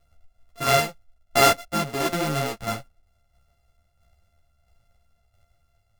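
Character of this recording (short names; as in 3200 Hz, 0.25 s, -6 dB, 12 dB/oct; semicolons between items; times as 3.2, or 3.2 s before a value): a buzz of ramps at a fixed pitch in blocks of 64 samples; tremolo saw down 1.5 Hz, depth 50%; a shimmering, thickened sound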